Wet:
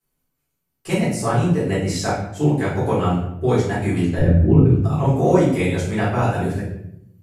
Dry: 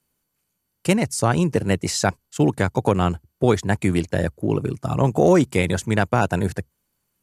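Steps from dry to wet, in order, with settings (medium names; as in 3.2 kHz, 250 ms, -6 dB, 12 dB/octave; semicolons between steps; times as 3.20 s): 4.18–4.84 s: RIAA curve playback; simulated room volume 170 m³, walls mixed, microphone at 3.8 m; trim -13.5 dB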